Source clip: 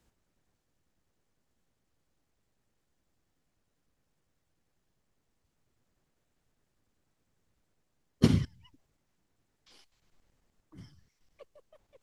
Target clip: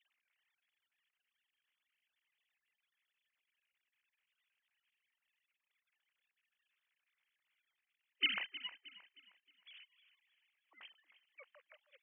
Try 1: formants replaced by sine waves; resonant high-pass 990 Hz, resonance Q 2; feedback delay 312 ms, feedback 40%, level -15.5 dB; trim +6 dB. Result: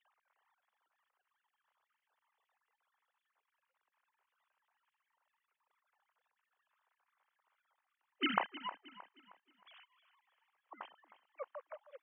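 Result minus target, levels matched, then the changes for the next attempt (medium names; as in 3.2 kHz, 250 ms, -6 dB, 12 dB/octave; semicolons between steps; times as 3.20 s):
1 kHz band +19.0 dB
change: resonant high-pass 2.4 kHz, resonance Q 2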